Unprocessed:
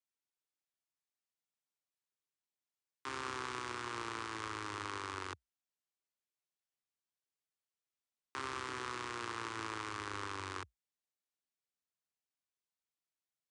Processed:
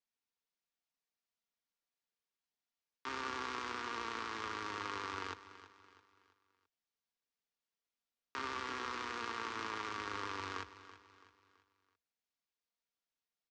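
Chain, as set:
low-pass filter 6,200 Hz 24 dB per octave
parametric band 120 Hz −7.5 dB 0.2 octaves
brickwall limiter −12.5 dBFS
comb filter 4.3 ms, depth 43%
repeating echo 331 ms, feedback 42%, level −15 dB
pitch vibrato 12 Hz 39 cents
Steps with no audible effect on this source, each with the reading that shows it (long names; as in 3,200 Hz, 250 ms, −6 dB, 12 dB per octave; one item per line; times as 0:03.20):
brickwall limiter −12.5 dBFS: peak of its input −25.5 dBFS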